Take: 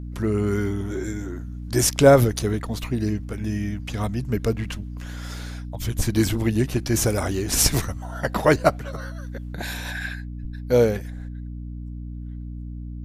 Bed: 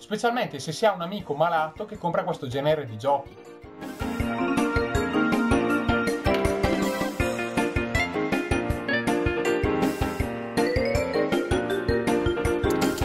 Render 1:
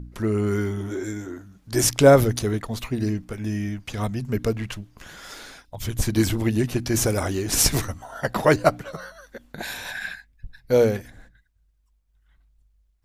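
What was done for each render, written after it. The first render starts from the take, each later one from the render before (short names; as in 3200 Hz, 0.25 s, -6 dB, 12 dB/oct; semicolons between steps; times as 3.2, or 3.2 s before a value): de-hum 60 Hz, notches 5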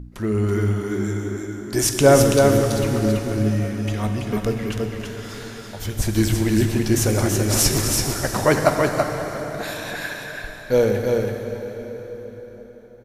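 echo 0.331 s -4 dB; plate-style reverb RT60 4.9 s, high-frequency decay 0.8×, DRR 4 dB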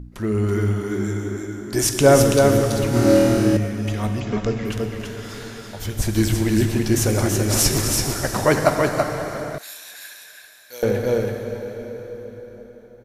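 2.9–3.57 flutter echo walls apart 4.3 m, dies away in 1.2 s; 4.2–4.65 brick-wall FIR low-pass 7800 Hz; 9.58–10.83 differentiator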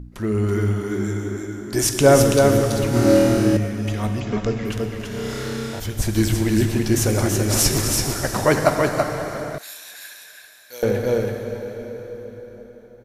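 5.08–5.8 flutter echo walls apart 5.3 m, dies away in 1.1 s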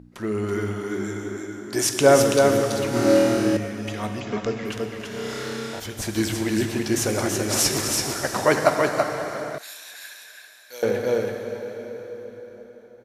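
HPF 330 Hz 6 dB/oct; high shelf 11000 Hz -8 dB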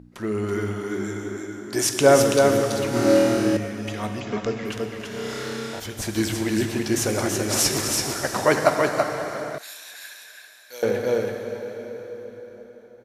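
nothing audible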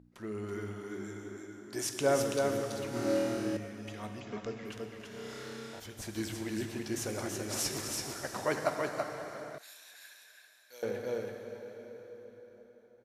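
gain -13 dB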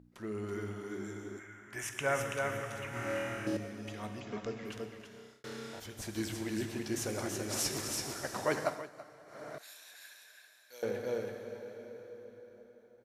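1.39–3.47 EQ curve 110 Hz 0 dB, 310 Hz -12 dB, 2000 Hz +7 dB, 2900 Hz +2 dB, 4400 Hz -16 dB, 6200 Hz -5 dB; 4.8–5.44 fade out; 8.6–9.53 dip -15 dB, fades 0.27 s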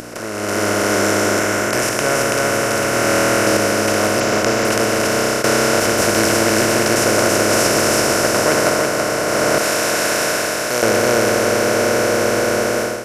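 per-bin compression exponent 0.2; AGC gain up to 13.5 dB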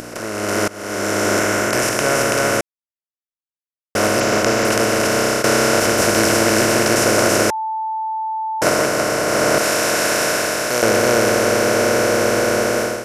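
0.68–1.35 fade in, from -23.5 dB; 2.61–3.95 mute; 7.5–8.62 bleep 880 Hz -20 dBFS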